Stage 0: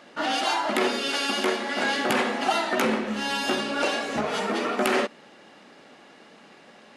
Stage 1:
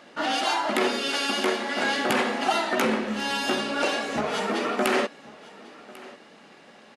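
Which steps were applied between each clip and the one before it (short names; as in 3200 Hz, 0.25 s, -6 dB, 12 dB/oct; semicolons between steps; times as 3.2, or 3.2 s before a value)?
echo 1.095 s -21 dB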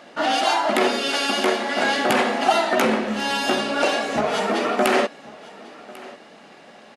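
bell 680 Hz +5 dB 0.45 oct; gain +3.5 dB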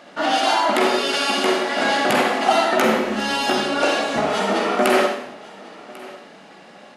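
reverb RT60 0.70 s, pre-delay 37 ms, DRR 3 dB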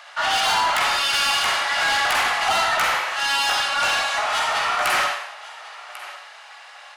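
HPF 890 Hz 24 dB/oct; soft clip -21 dBFS, distortion -12 dB; gain +5.5 dB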